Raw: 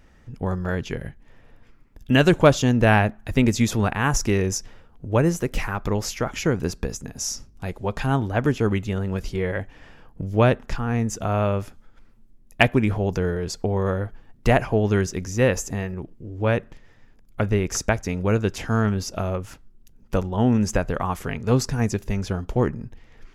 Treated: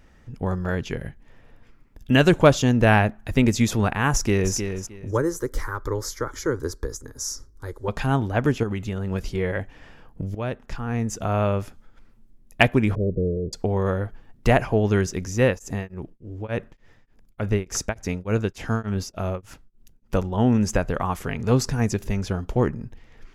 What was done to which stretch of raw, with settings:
0:04.12–0:04.55: delay throw 310 ms, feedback 20%, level −7.5 dB
0:05.11–0:07.88: phaser with its sweep stopped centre 710 Hz, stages 6
0:08.63–0:09.11: downward compressor, threshold −22 dBFS
0:10.35–0:11.57: fade in equal-power, from −16 dB
0:12.95–0:13.53: Butterworth low-pass 600 Hz 96 dB per octave
0:15.45–0:20.15: tremolo along a rectified sine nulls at 3.4 Hz
0:21.39–0:22.08: upward compression, threshold −22 dBFS

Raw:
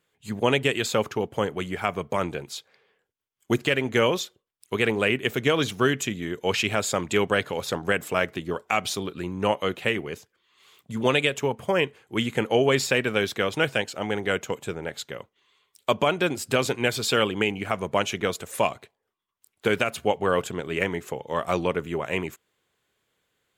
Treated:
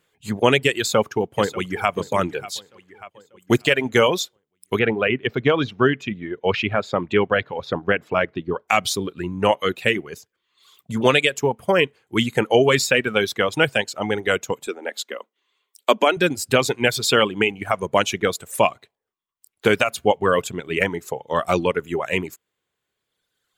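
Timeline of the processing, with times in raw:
0:00.78–0:01.91: delay throw 590 ms, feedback 45%, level −11.5 dB
0:04.79–0:08.68: high-frequency loss of the air 290 metres
0:14.67–0:16.17: Butterworth high-pass 220 Hz 48 dB per octave
whole clip: reverb reduction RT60 1.7 s; level +6 dB

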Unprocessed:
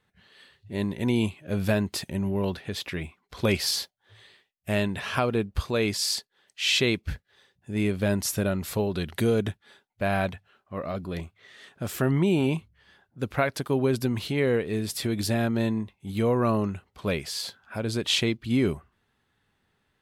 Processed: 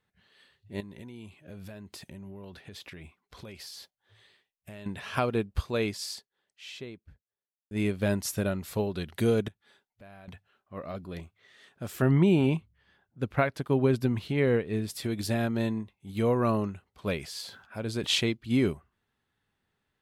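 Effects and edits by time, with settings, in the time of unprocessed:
0:00.80–0:04.86: downward compressor 12 to 1, threshold −33 dBFS
0:05.49–0:07.71: fade out and dull
0:09.48–0:10.28: downward compressor 2.5 to 1, threshold −49 dBFS
0:12.02–0:14.88: bass and treble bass +3 dB, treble −6 dB
0:17.16–0:18.27: level that may fall only so fast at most 89 dB per second
whole clip: expander for the loud parts 1.5 to 1, over −33 dBFS

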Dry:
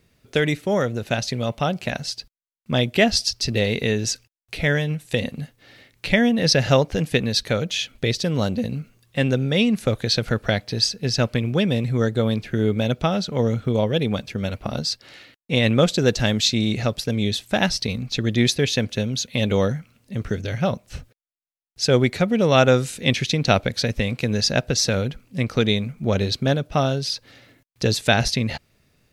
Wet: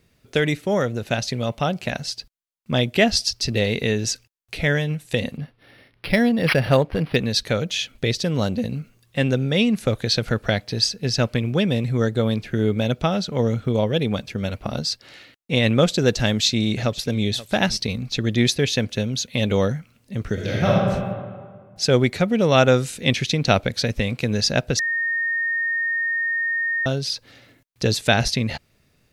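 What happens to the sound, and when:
0:05.37–0:07.16: linearly interpolated sample-rate reduction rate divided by 6×
0:16.24–0:17.23: delay throw 530 ms, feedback 10%, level −17.5 dB
0:20.33–0:20.73: thrown reverb, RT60 1.8 s, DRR −4.5 dB
0:24.79–0:26.86: beep over 1,840 Hz −20 dBFS

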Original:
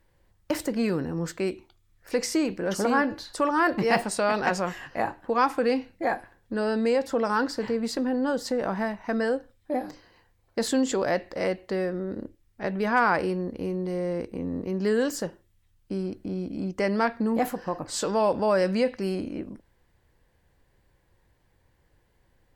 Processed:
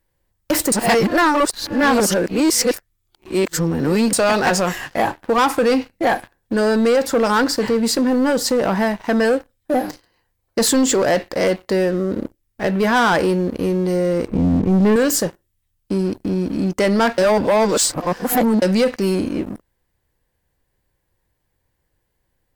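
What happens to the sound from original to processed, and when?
0:00.72–0:04.13: reverse
0:14.28–0:14.96: bass and treble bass +11 dB, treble −14 dB
0:17.18–0:18.62: reverse
whole clip: high-shelf EQ 7,500 Hz +11.5 dB; leveller curve on the samples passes 3

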